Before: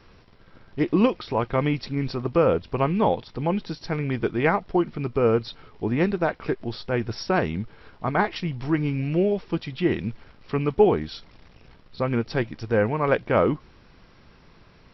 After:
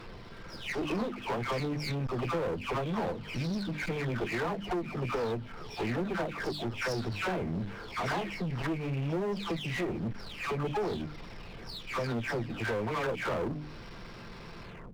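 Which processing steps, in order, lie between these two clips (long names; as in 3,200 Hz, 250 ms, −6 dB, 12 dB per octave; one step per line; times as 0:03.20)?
every frequency bin delayed by itself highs early, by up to 439 ms
mains-hum notches 50/100/150/200/250/300 Hz
healed spectral selection 0:03.27–0:03.87, 340–1,400 Hz before
downward compressor 4 to 1, threshold −31 dBFS, peak gain reduction 15.5 dB
asymmetric clip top −39 dBFS
power curve on the samples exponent 0.7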